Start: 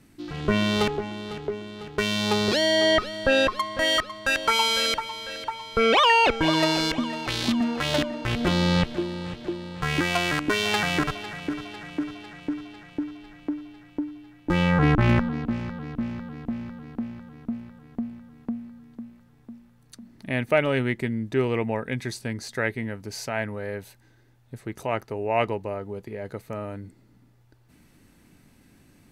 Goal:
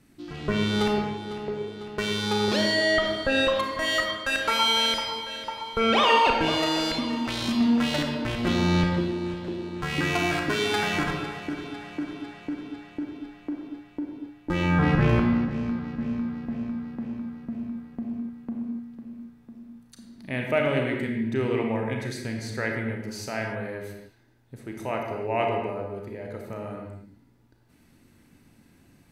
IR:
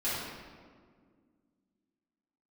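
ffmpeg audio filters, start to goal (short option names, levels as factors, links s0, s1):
-filter_complex "[0:a]asplit=2[s0][s1];[s1]highpass=55[s2];[1:a]atrim=start_sample=2205,afade=t=out:st=0.32:d=0.01,atrim=end_sample=14553,adelay=31[s3];[s2][s3]afir=irnorm=-1:irlink=0,volume=0.376[s4];[s0][s4]amix=inputs=2:normalize=0,volume=0.631"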